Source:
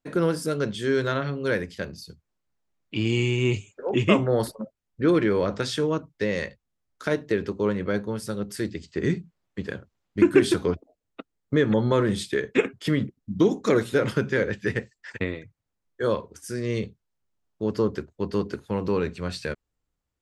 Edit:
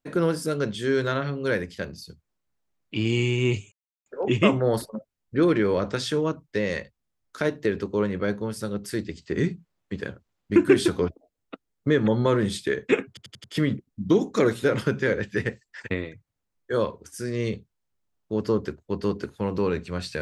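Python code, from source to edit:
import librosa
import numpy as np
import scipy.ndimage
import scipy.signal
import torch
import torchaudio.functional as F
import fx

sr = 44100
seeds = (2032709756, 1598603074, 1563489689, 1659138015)

y = fx.edit(x, sr, fx.insert_silence(at_s=3.72, length_s=0.34),
    fx.stutter(start_s=12.74, slice_s=0.09, count=5), tone=tone)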